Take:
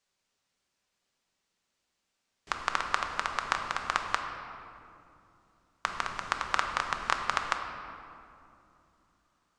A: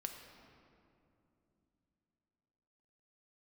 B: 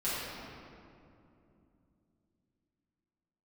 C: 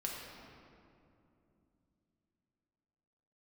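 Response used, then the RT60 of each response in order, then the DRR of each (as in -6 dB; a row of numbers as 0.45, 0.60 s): A; 2.8, 2.7, 2.7 s; 3.5, -12.0, -2.5 dB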